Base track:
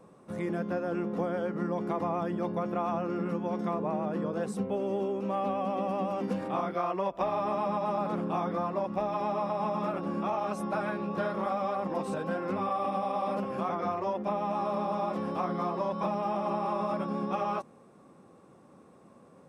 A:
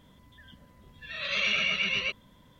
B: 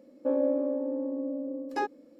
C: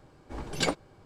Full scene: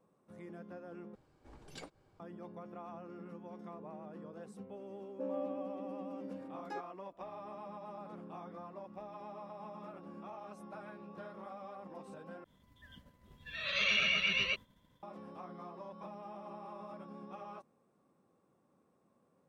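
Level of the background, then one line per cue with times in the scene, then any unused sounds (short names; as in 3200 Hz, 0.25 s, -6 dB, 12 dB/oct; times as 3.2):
base track -17 dB
1.15 replace with C -12.5 dB + compressor 1.5:1, threshold -48 dBFS
4.94 add B -13 dB
12.44 replace with A -3.5 dB + expander -52 dBFS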